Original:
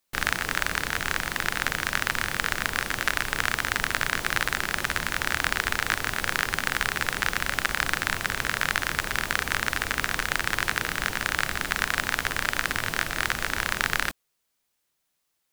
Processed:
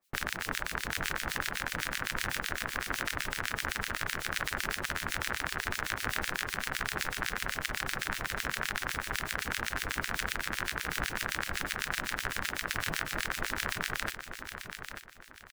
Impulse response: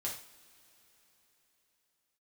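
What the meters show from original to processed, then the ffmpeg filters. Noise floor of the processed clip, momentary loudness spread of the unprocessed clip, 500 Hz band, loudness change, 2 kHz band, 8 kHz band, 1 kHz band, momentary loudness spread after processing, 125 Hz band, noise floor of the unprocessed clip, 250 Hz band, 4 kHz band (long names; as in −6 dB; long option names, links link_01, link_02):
−48 dBFS, 2 LU, −6.0 dB, −7.5 dB, −8.0 dB, −6.0 dB, −7.0 dB, 1 LU, −5.5 dB, −77 dBFS, −5.5 dB, −6.5 dB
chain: -filter_complex "[0:a]alimiter=limit=-12.5dB:level=0:latency=1:release=456,acrossover=split=1800[link_01][link_02];[link_01]aeval=exprs='val(0)*(1-1/2+1/2*cos(2*PI*7.9*n/s))':channel_layout=same[link_03];[link_02]aeval=exprs='val(0)*(1-1/2-1/2*cos(2*PI*7.9*n/s))':channel_layout=same[link_04];[link_03][link_04]amix=inputs=2:normalize=0,asplit=2[link_05][link_06];[link_06]aecho=0:1:889|1778|2667|3556:0.376|0.12|0.0385|0.0123[link_07];[link_05][link_07]amix=inputs=2:normalize=0,volume=4.5dB"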